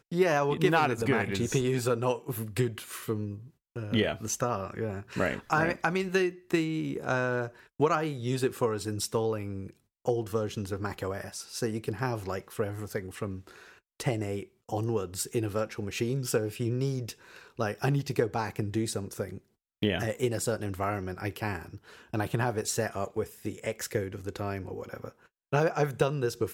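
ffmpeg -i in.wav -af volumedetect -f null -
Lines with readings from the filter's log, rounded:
mean_volume: -30.9 dB
max_volume: -12.4 dB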